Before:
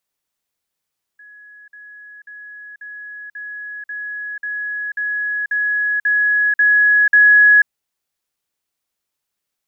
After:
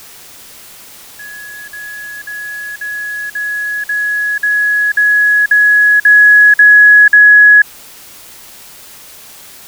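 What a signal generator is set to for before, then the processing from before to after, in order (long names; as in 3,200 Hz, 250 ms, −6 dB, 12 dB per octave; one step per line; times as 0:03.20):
level staircase 1,680 Hz −39.5 dBFS, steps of 3 dB, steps 12, 0.49 s 0.05 s
dynamic equaliser 1,500 Hz, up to −3 dB, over −22 dBFS, Q 3.2
bit-depth reduction 8 bits, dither triangular
boost into a limiter +12.5 dB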